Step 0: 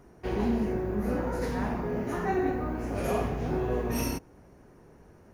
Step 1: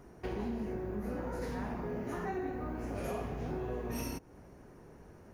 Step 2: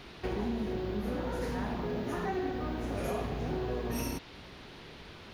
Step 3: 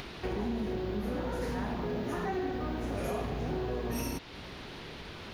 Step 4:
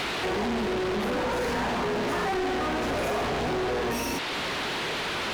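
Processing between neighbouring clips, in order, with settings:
compressor 3:1, threshold -37 dBFS, peak gain reduction 10.5 dB
band noise 610–4200 Hz -57 dBFS; gain +3.5 dB
in parallel at -3 dB: limiter -30 dBFS, peak gain reduction 7 dB; on the sum: upward compressor, threshold -35 dBFS; gain -3 dB
overdrive pedal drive 32 dB, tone 3300 Hz, clips at -23 dBFS; gain +1.5 dB

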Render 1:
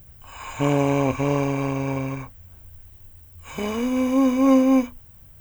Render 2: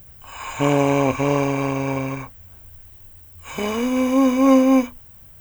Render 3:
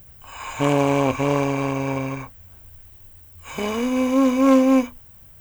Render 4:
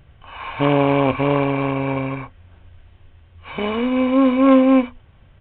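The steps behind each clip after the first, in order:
low shelf 250 Hz -5.5 dB; gain +4.5 dB
self-modulated delay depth 0.091 ms; gain -1 dB
downsampling 8000 Hz; gain +2.5 dB

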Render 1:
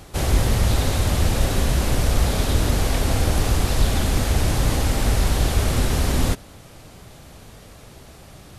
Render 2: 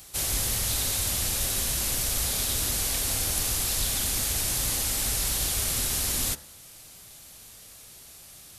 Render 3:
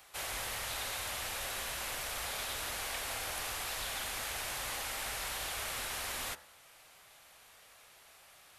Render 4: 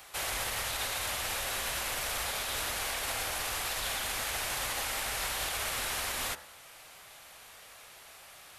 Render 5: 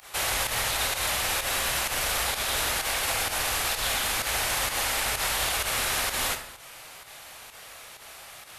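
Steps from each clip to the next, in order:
pre-emphasis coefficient 0.9; de-hum 71.79 Hz, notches 28; gain +5 dB
three-band isolator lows -18 dB, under 550 Hz, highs -15 dB, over 2800 Hz
limiter -31.5 dBFS, peak gain reduction 5.5 dB; gain +7 dB
pump 128 bpm, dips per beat 1, -19 dB, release 74 ms; on a send at -8 dB: reverb RT60 0.60 s, pre-delay 20 ms; on the sum: gain +6.5 dB

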